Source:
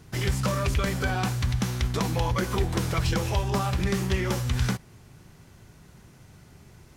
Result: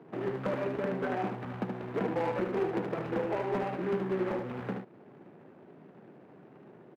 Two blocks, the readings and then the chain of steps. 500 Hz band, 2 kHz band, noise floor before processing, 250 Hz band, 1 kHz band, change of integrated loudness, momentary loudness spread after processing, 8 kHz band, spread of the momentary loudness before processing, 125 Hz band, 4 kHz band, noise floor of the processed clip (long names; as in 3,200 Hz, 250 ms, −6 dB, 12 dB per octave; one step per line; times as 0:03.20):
+1.0 dB, −8.5 dB, −53 dBFS, −4.0 dB, −4.5 dB, −6.5 dB, 6 LU, below −25 dB, 2 LU, −15.0 dB, −19.0 dB, −55 dBFS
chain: running median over 41 samples
high-pass filter 140 Hz 24 dB per octave
in parallel at +3 dB: downward compressor, threshold −41 dBFS, peak gain reduction 16 dB
on the sum: three-way crossover with the lows and the highs turned down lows −19 dB, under 260 Hz, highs −23 dB, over 2,700 Hz
hard clipping −26 dBFS, distortion −19 dB
on a send: single-tap delay 75 ms −5.5 dB
on the sum: level +1 dB